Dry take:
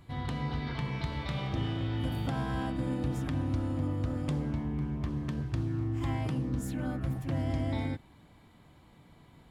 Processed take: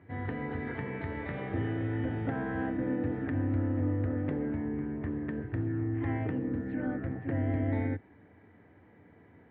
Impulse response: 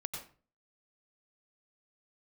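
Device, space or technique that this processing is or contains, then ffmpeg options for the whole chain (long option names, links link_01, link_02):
bass cabinet: -af "highpass=frequency=87:width=0.5412,highpass=frequency=87:width=1.3066,equalizer=frequency=92:width_type=q:width=4:gain=6,equalizer=frequency=140:width_type=q:width=4:gain=-10,equalizer=frequency=290:width_type=q:width=4:gain=4,equalizer=frequency=440:width_type=q:width=4:gain=8,equalizer=frequency=1100:width_type=q:width=4:gain=-8,equalizer=frequency=1800:width_type=q:width=4:gain=9,lowpass=frequency=2100:width=0.5412,lowpass=frequency=2100:width=1.3066"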